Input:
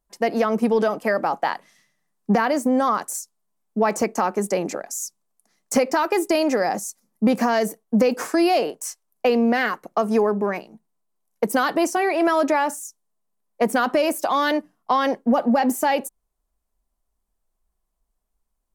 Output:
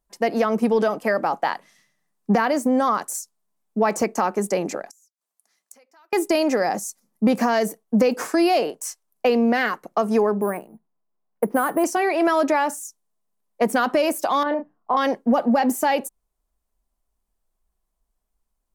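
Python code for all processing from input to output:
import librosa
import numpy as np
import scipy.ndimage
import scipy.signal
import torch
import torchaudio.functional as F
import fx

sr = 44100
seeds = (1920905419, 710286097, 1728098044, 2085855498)

y = fx.chain(x, sr, fx.highpass(hz=1100.0, slope=6),
    fx.gate_flip(shuts_db=-29.0, range_db=-30), at=(4.9, 6.13))
y = fx.chain(y, sr, fx.lowpass(hz=1600.0, slope=12),
    fx.resample_bad(factor=4, down='filtered', up='hold'), at=(10.41, 11.84))
y = fx.chain(y, sr, fx.lowpass(hz=1100.0, slope=12),
    fx.peak_eq(hz=180.0, db=-5.0, octaves=2.0),
    fx.doubler(ms=31.0, db=-6), at=(14.43, 14.97))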